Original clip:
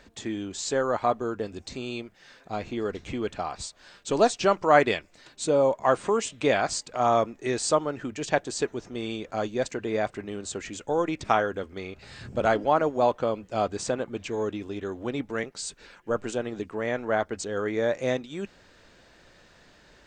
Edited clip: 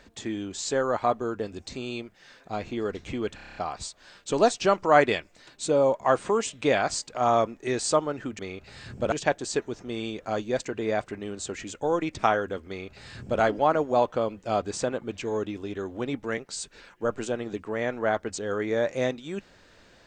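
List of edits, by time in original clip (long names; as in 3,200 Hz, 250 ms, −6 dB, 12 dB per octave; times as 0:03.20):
0:03.35: stutter 0.03 s, 8 plays
0:11.74–0:12.47: duplicate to 0:08.18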